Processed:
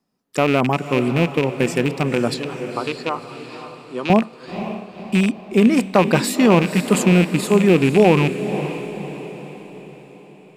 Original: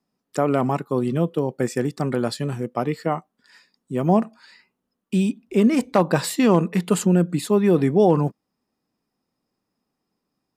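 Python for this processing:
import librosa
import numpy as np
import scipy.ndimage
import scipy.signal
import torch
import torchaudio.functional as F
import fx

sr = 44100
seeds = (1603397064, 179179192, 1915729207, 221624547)

y = fx.rattle_buzz(x, sr, strikes_db=-23.0, level_db=-16.0)
y = fx.cabinet(y, sr, low_hz=410.0, low_slope=12, high_hz=9200.0, hz=(680.0, 1000.0, 2000.0, 3900.0, 8200.0), db=(-10, 3, -8, 6, -8), at=(2.34, 4.1))
y = fx.echo_diffused(y, sr, ms=516, feedback_pct=49, wet_db=-10.5)
y = y * 10.0 ** (3.0 / 20.0)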